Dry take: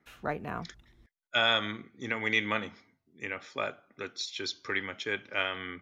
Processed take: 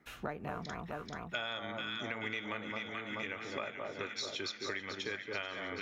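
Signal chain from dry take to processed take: de-esser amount 70%; on a send: echo whose repeats swap between lows and highs 217 ms, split 1.2 kHz, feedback 77%, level -5.5 dB; on the sum: compression 6:1, threshold -40 dBFS, peak gain reduction 17 dB; trim +3.5 dB

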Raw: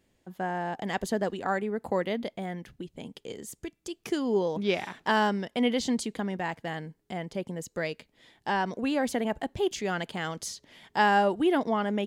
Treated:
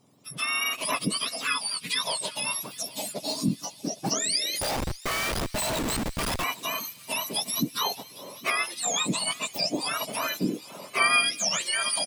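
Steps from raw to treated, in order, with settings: spectrum inverted on a logarithmic axis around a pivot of 1.4 kHz; recorder AGC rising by 5.1 dB/s; dynamic bell 400 Hz, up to -5 dB, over -50 dBFS, Q 3.5; in parallel at +2 dB: compression 5:1, threshold -40 dBFS, peak gain reduction 17 dB; on the sum: feedback delay 808 ms, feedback 35%, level -22 dB; 4.61–6.44 s: Schmitt trigger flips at -29 dBFS; on a send: feedback echo behind a high-pass 200 ms, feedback 85%, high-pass 2.8 kHz, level -19.5 dB; on the sum: trim +1 dB

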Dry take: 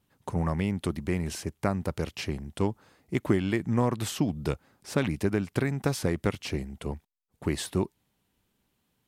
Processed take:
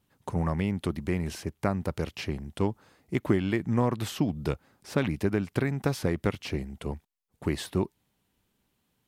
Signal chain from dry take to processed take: dynamic bell 8.2 kHz, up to -6 dB, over -53 dBFS, Q 0.93

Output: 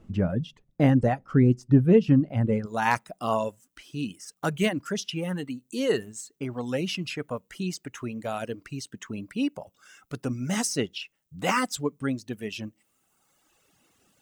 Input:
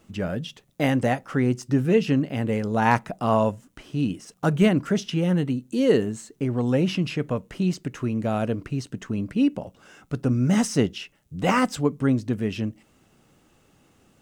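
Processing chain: reverb removal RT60 1.4 s; tilt EQ -3 dB/octave, from 2.65 s +2 dB/octave; trim -2.5 dB

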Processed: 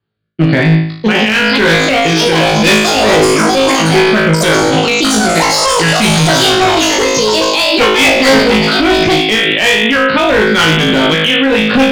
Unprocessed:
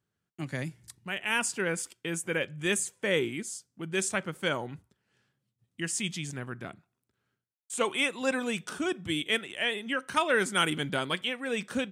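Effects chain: steep low-pass 4.8 kHz 96 dB/octave; gate -52 dBFS, range -18 dB; gain riding within 4 dB 2 s; rotary cabinet horn 1 Hz; ever faster or slower copies 762 ms, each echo +6 st, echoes 3; on a send: flutter echo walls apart 3.2 m, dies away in 0.59 s; on the sum: one-sided clip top -30.5 dBFS, bottom -21 dBFS; loudness maximiser +30 dB; trim -1 dB

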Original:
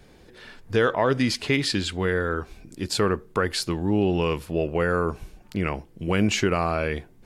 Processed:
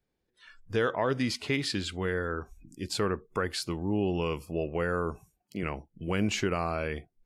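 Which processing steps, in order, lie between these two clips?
spectral noise reduction 23 dB; 5.19–5.63 s: high-pass 160 Hz 12 dB/octave; trim -6.5 dB

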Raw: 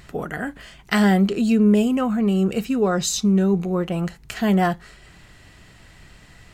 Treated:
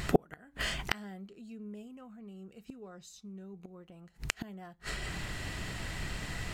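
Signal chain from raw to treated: inverted gate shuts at -19 dBFS, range -38 dB; trim +9 dB

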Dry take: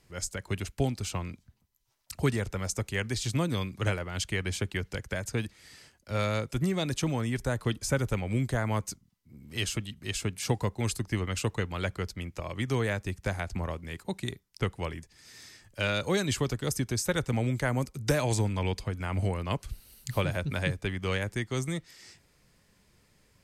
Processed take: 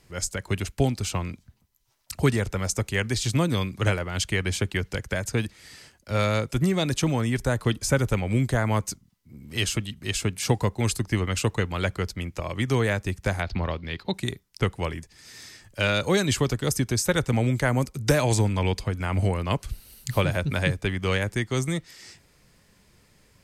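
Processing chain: 13.42–14.14 s: resonant high shelf 5.9 kHz -13 dB, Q 3; trim +5.5 dB

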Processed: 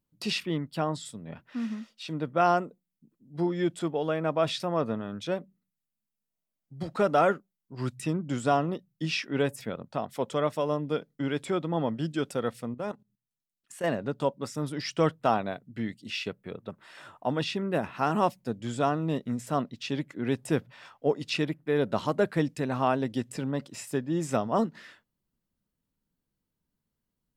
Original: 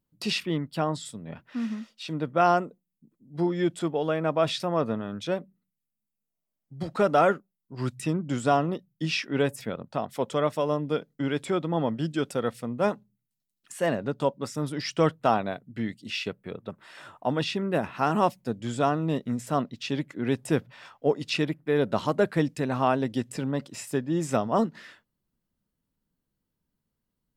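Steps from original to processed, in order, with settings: 12.74–13.84 s: level held to a coarse grid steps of 15 dB; trim -2 dB

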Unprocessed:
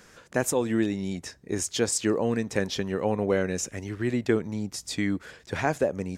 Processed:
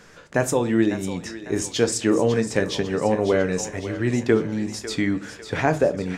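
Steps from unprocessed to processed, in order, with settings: treble shelf 8.1 kHz -9.5 dB; thinning echo 549 ms, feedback 53%, high-pass 620 Hz, level -10.5 dB; reverberation RT60 0.35 s, pre-delay 7 ms, DRR 9 dB; trim +4.5 dB

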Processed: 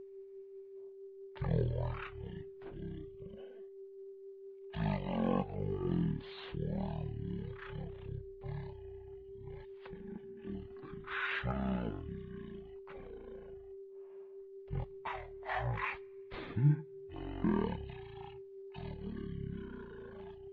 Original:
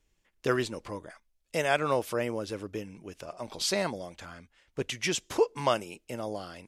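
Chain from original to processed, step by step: whistle 1.2 kHz -40 dBFS; phaser 1.9 Hz, delay 3.5 ms, feedback 27%; wide varispeed 0.325×; trim -8 dB

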